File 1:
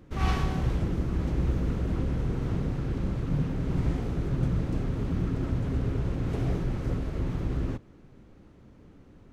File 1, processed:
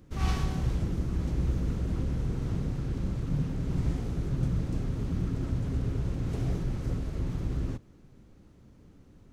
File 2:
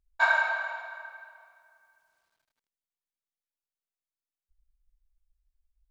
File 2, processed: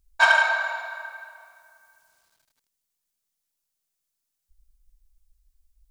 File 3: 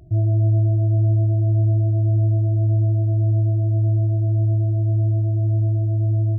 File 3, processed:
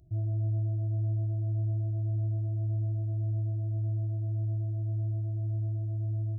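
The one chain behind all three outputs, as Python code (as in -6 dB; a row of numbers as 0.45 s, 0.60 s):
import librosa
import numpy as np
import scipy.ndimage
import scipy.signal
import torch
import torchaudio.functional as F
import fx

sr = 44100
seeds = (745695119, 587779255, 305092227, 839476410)

y = fx.self_delay(x, sr, depth_ms=0.05)
y = fx.bass_treble(y, sr, bass_db=4, treble_db=9)
y = y * 10.0 ** (-30 / 20.0) / np.sqrt(np.mean(np.square(y)))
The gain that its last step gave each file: -5.5 dB, +6.0 dB, -16.0 dB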